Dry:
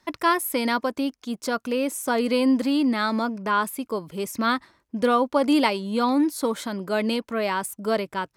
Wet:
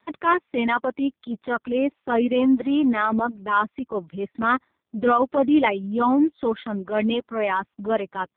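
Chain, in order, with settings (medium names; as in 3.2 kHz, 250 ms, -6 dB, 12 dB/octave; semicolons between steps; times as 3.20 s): 3.56–5.79 s: band-stop 2.8 kHz, Q 19; reverb removal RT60 0.95 s; transient shaper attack -8 dB, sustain -1 dB; trim +5 dB; AMR-NB 5.15 kbps 8 kHz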